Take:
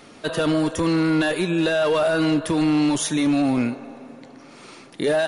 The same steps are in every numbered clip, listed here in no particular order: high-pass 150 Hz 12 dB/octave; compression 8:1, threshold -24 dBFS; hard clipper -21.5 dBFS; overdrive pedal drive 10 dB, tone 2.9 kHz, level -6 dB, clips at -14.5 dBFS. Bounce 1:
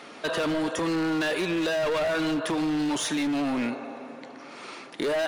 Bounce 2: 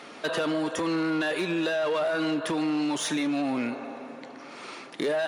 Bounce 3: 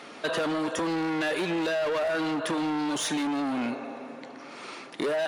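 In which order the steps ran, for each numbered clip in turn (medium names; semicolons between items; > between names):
high-pass > overdrive pedal > hard clipper > compression; overdrive pedal > compression > hard clipper > high-pass; hard clipper > high-pass > overdrive pedal > compression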